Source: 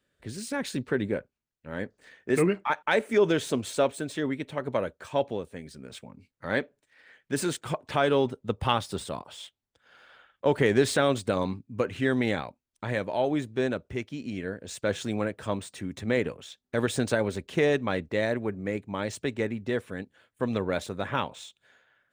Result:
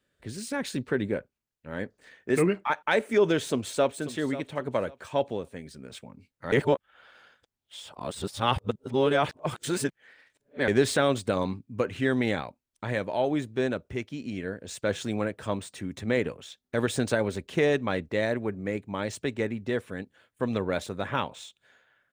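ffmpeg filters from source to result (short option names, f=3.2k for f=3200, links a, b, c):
-filter_complex "[0:a]asplit=2[a][b];[b]afade=t=in:st=3.47:d=0.01,afade=t=out:st=3.93:d=0.01,aecho=0:1:540|1080|1620:0.199526|0.0498816|0.0124704[c];[a][c]amix=inputs=2:normalize=0,asplit=3[d][e][f];[d]atrim=end=6.522[g];[e]atrim=start=6.518:end=10.682,asetpts=PTS-STARTPTS,areverse[h];[f]atrim=start=10.678[i];[g][h]acrossfade=d=0.004:c1=hsin:c2=hsin[j];[j][i]acrossfade=d=0.004:c1=hsin:c2=hsin"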